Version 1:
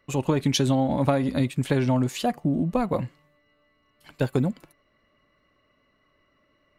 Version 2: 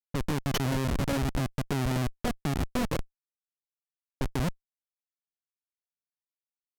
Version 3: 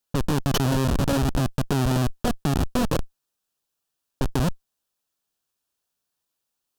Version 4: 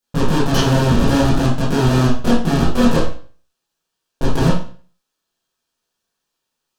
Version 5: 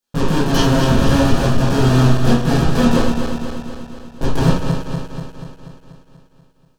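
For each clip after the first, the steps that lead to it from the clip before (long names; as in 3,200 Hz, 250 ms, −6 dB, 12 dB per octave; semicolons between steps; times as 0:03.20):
comparator with hysteresis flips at −21 dBFS; low-pass that shuts in the quiet parts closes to 370 Hz, open at −29.5 dBFS
parametric band 2,100 Hz −11 dB 0.3 octaves; in parallel at 0 dB: compressor whose output falls as the input rises −37 dBFS, ratio −1; on the sum: level +4 dB
convolution reverb RT60 0.40 s, pre-delay 16 ms, DRR −9.5 dB; level −2 dB
feedback delay that plays each chunk backwards 121 ms, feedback 77%, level −6.5 dB; level −1 dB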